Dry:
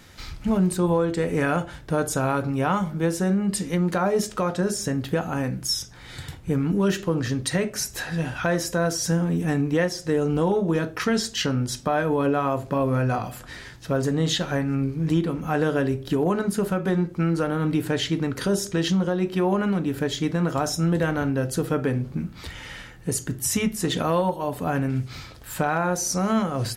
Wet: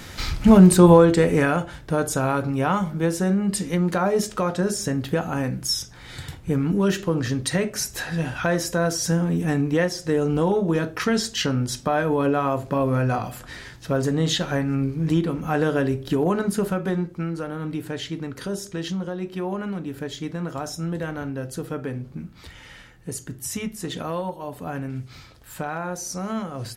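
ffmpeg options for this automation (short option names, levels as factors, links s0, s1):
-af "volume=3.16,afade=t=out:st=0.89:d=0.65:silence=0.354813,afade=t=out:st=16.58:d=0.74:silence=0.446684"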